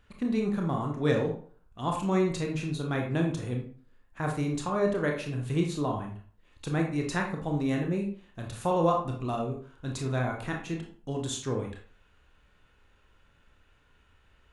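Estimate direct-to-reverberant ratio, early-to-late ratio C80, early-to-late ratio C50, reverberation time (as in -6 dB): 0.5 dB, 10.5 dB, 5.5 dB, 0.50 s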